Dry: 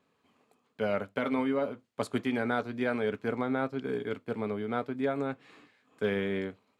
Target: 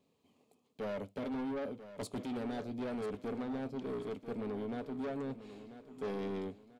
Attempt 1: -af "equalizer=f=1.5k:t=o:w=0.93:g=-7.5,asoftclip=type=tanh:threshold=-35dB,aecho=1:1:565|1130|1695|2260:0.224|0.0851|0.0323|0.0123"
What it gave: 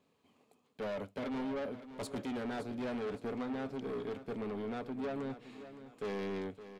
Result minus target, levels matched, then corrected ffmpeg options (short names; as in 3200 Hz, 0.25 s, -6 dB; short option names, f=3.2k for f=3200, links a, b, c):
echo 0.425 s early; 2000 Hz band +3.0 dB
-af "equalizer=f=1.5k:t=o:w=0.93:g=-18.5,asoftclip=type=tanh:threshold=-35dB,aecho=1:1:990|1980|2970|3960:0.224|0.0851|0.0323|0.0123"